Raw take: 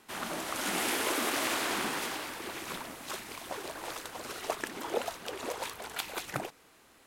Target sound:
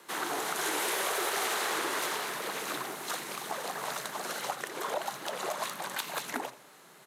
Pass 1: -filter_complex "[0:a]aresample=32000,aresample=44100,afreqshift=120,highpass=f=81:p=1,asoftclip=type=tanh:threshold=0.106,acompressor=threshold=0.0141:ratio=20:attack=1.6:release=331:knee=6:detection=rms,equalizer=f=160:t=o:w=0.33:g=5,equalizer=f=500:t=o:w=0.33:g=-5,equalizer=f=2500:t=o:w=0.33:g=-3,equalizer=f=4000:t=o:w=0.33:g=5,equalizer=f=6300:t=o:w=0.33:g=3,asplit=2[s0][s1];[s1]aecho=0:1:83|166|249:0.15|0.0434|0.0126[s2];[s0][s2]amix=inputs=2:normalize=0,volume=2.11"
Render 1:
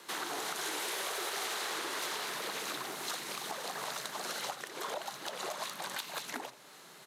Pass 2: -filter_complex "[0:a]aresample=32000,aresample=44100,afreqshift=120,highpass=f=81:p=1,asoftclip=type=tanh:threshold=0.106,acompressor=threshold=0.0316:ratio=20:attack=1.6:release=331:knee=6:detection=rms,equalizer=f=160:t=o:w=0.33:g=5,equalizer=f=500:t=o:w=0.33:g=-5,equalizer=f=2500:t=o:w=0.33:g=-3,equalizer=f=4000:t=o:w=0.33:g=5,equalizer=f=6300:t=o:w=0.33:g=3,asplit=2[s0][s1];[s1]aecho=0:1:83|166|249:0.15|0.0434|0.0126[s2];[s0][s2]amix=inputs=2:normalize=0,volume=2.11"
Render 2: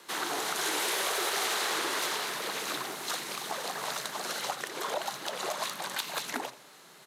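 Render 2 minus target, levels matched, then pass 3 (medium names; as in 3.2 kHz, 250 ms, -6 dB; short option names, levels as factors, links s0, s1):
4 kHz band +2.5 dB
-filter_complex "[0:a]aresample=32000,aresample=44100,afreqshift=120,highpass=f=81:p=1,equalizer=f=4400:t=o:w=1.4:g=-5.5,asoftclip=type=tanh:threshold=0.106,acompressor=threshold=0.0316:ratio=20:attack=1.6:release=331:knee=6:detection=rms,equalizer=f=160:t=o:w=0.33:g=5,equalizer=f=500:t=o:w=0.33:g=-5,equalizer=f=2500:t=o:w=0.33:g=-3,equalizer=f=4000:t=o:w=0.33:g=5,equalizer=f=6300:t=o:w=0.33:g=3,asplit=2[s0][s1];[s1]aecho=0:1:83|166|249:0.15|0.0434|0.0126[s2];[s0][s2]amix=inputs=2:normalize=0,volume=2.11"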